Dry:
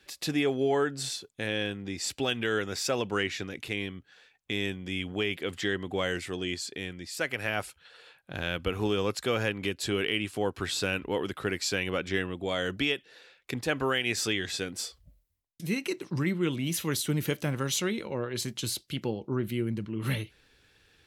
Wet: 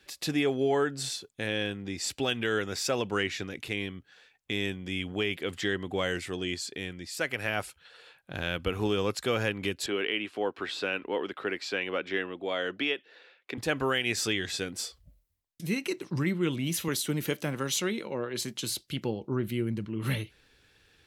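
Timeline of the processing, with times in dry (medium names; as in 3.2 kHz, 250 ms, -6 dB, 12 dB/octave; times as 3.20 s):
9.86–13.58 s: three-band isolator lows -20 dB, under 230 Hz, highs -17 dB, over 4.2 kHz
16.88–18.70 s: high-pass 160 Hz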